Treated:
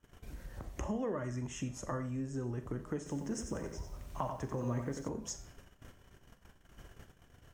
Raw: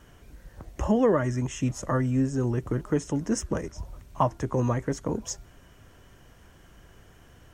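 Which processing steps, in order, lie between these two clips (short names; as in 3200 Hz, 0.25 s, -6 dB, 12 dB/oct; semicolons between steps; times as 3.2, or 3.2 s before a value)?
de-hum 160.2 Hz, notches 33; gate -50 dBFS, range -26 dB; compressor 2.5:1, threshold -47 dBFS, peak gain reduction 19 dB; reverb RT60 0.45 s, pre-delay 29 ms, DRR 10 dB; 2.97–5.09 lo-fi delay 91 ms, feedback 35%, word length 11-bit, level -6.5 dB; gain +3.5 dB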